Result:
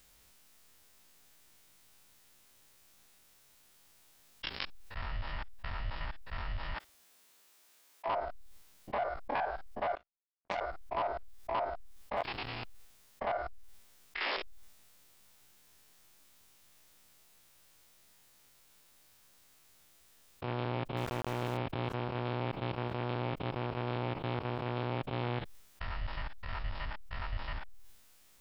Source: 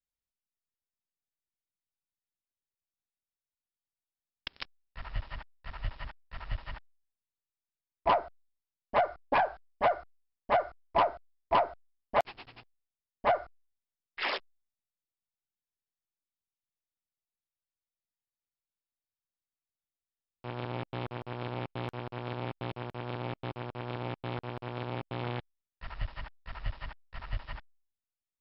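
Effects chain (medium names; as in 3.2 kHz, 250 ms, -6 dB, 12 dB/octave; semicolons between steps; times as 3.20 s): spectrogram pixelated in time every 50 ms; 6.74–8.07 s: high-pass 200 Hz -> 410 Hz 12 dB/octave; 9.95–10.61 s: power-law waveshaper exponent 3; 20.97–21.57 s: small samples zeroed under -44 dBFS; level flattener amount 70%; trim -7.5 dB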